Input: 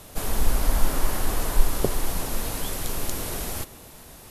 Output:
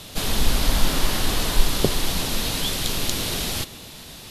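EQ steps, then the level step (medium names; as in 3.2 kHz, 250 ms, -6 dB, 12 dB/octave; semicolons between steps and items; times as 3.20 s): peaking EQ 170 Hz +6.5 dB 2.1 oct; peaking EQ 3.7 kHz +14 dB 1.6 oct; 0.0 dB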